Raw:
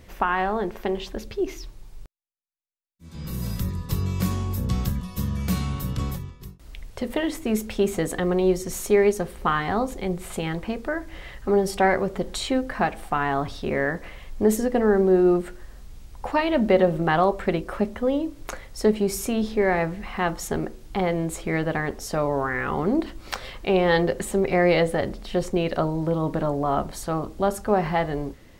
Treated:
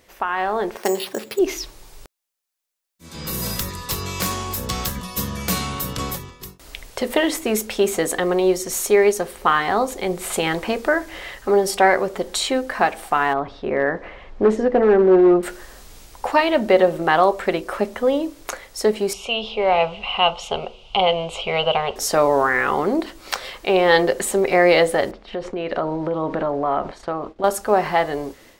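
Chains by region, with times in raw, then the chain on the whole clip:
0.77–1.39 HPF 120 Hz 24 dB/oct + air absorption 88 m + careless resampling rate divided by 6×, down none, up hold
3.59–4.96 self-modulated delay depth 0.055 ms + bell 200 Hz -4.5 dB 2.7 oct + mismatched tape noise reduction encoder only
13.33–15.43 hard clip -14.5 dBFS + tape spacing loss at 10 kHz 35 dB
19.13–21.96 synth low-pass 2900 Hz, resonance Q 8.3 + fixed phaser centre 730 Hz, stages 4
25.11–27.44 LPF 2700 Hz + expander -34 dBFS + compressor 5:1, threshold -27 dBFS
whole clip: AGC gain up to 13 dB; tone controls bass -14 dB, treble +3 dB; gain -1.5 dB

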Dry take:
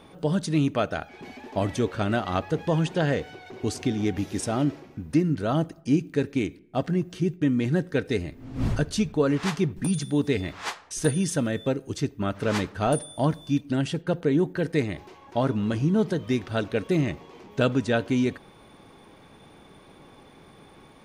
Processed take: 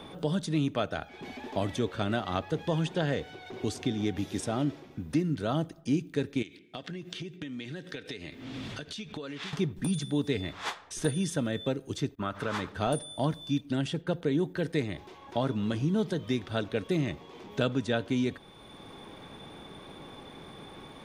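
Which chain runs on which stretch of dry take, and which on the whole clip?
6.42–9.53 weighting filter D + compressor 16:1, threshold -35 dBFS
12.15–12.69 bell 1200 Hz +9.5 dB 1.3 oct + expander -39 dBFS + compressor 2:1, threshold -29 dBFS
whole clip: bell 3500 Hz +7.5 dB 0.2 oct; three-band squash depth 40%; gain -5 dB

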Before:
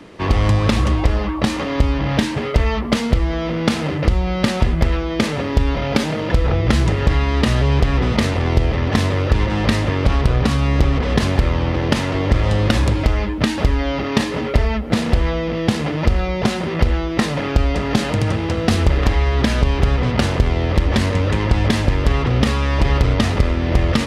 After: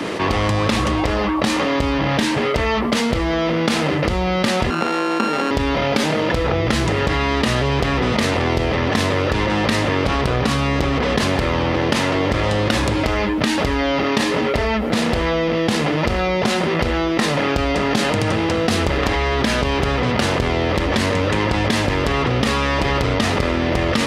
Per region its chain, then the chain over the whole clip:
4.7–5.51 sample sorter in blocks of 32 samples + HPF 210 Hz 24 dB/oct + tape spacing loss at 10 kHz 22 dB
whole clip: HPF 260 Hz 6 dB/oct; fast leveller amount 70%; gain -1 dB

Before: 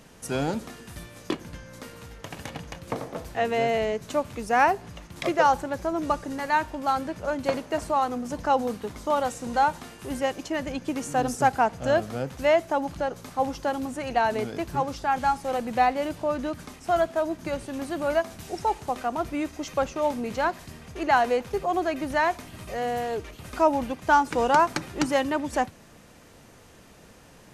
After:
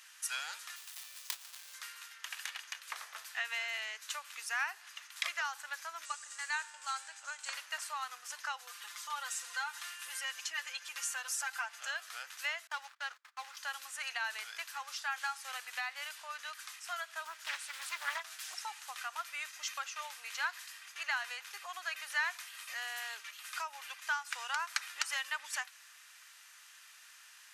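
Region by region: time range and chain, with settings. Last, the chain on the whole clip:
0.76–1.74 half-waves squared off + bell 1600 Hz -11 dB 1.7 oct
6.05–7.53 synth low-pass 7900 Hz, resonance Q 4.7 + resonator 100 Hz, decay 1.9 s, mix 50%
8.59–11.81 comb 5.8 ms, depth 82% + compressor 1.5:1, threshold -34 dBFS
12.67–13.57 median filter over 15 samples + weighting filter A + gate -47 dBFS, range -25 dB
17.25–18.54 comb 6.4 ms, depth 71% + Doppler distortion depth 0.75 ms
whole clip: compressor 12:1, threshold -23 dBFS; HPF 1400 Hz 24 dB/oct; notch 2200 Hz, Q 23; gain +1 dB

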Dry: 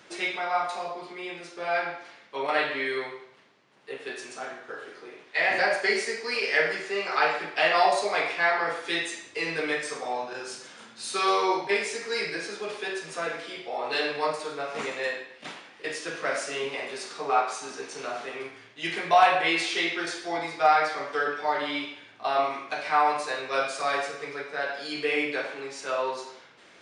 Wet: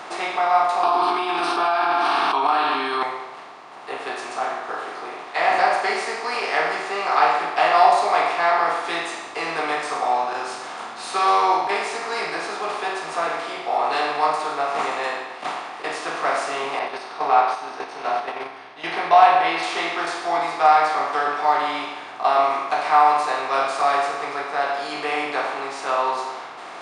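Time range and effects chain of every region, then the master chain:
0.83–3.03 resonant low shelf 230 Hz -7.5 dB, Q 3 + fixed phaser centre 2000 Hz, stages 6 + fast leveller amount 100%
16.79–19.63 polynomial smoothing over 15 samples + notch 1200 Hz, Q 10 + gate -37 dBFS, range -8 dB
whole clip: per-bin compression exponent 0.6; band shelf 940 Hz +8.5 dB 1.1 oct; gain -3.5 dB

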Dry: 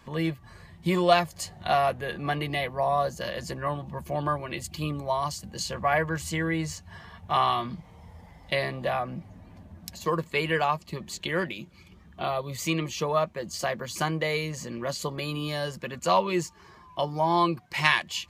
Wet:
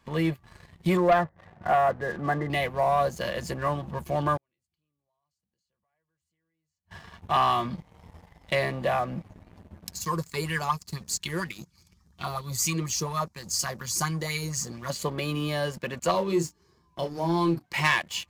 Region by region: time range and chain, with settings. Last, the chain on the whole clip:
0.97–2.5 brick-wall FIR low-pass 2100 Hz + low shelf 61 Hz -10.5 dB
4.37–6.91 compressor 2.5:1, threshold -38 dBFS + flipped gate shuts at -34 dBFS, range -36 dB
9.93–14.9 EQ curve 140 Hz 0 dB, 610 Hz -19 dB, 1000 Hz -7 dB, 3000 Hz -12 dB, 5100 Hz +10 dB, 14000 Hz +6 dB + LFO bell 4.2 Hz 370–3000 Hz +12 dB
16.11–17.64 band shelf 1400 Hz -10 dB 2.7 oct + notches 50/100/150/200/250/300 Hz + doubler 30 ms -7 dB
whole clip: dynamic EQ 4300 Hz, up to -4 dB, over -43 dBFS, Q 1.1; sample leveller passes 2; gain -5 dB

